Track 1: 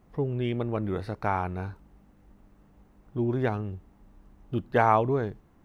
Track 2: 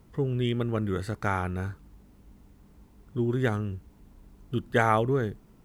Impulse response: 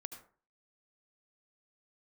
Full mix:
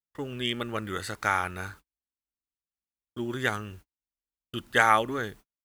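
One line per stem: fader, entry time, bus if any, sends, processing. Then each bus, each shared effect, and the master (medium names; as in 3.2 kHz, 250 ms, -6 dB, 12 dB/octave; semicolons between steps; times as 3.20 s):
-11.0 dB, 0.00 s, no send, random-step tremolo 2.7 Hz, depth 80%
0.0 dB, 3.3 ms, no send, tilt shelf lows -9 dB, about 730 Hz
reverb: none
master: gate -47 dBFS, range -46 dB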